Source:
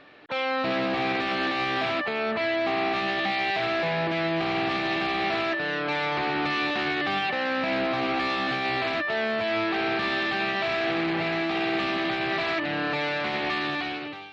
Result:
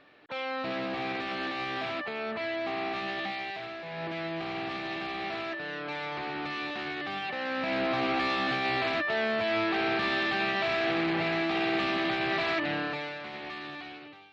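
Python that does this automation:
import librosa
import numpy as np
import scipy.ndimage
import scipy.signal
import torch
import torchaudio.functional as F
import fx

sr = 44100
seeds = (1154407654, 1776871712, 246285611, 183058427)

y = fx.gain(x, sr, db=fx.line((3.22, -7.0), (3.83, -15.0), (4.05, -8.5), (7.17, -8.5), (7.93, -2.0), (12.71, -2.0), (13.2, -12.0)))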